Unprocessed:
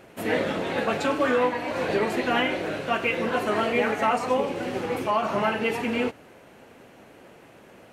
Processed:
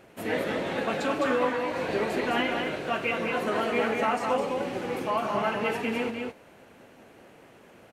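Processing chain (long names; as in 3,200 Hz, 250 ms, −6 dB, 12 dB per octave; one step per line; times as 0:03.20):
single-tap delay 209 ms −4.5 dB
level −4 dB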